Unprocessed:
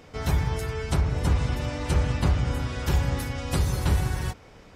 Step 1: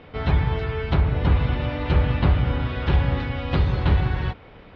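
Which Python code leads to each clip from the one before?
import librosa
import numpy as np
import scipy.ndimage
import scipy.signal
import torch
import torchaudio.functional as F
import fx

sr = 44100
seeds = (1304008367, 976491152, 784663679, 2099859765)

y = scipy.signal.sosfilt(scipy.signal.butter(6, 3800.0, 'lowpass', fs=sr, output='sos'), x)
y = F.gain(torch.from_numpy(y), 4.0).numpy()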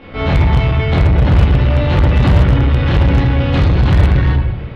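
y = fx.room_shoebox(x, sr, seeds[0], volume_m3=220.0, walls='mixed', distance_m=2.2)
y = fx.cheby_harmonics(y, sr, harmonics=(5,), levels_db=(-16,), full_scale_db=-2.5)
y = F.gain(torch.from_numpy(y), -1.0).numpy()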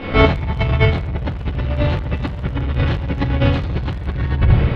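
y = fx.over_compress(x, sr, threshold_db=-17.0, ratio=-0.5)
y = F.gain(torch.from_numpy(y), 1.5).numpy()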